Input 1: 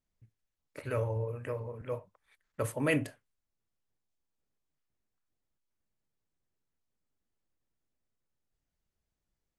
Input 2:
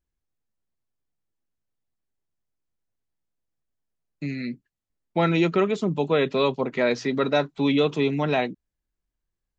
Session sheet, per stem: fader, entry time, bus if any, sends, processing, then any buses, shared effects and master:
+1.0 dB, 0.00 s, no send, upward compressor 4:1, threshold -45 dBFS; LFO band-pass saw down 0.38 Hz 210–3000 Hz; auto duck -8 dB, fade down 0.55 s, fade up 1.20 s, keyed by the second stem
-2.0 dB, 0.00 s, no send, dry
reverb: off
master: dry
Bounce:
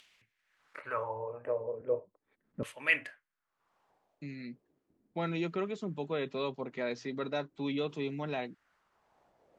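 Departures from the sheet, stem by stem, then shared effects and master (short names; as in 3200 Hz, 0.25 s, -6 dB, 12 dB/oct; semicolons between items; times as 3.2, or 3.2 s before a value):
stem 1 +1.0 dB -> +8.0 dB; stem 2 -2.0 dB -> -13.0 dB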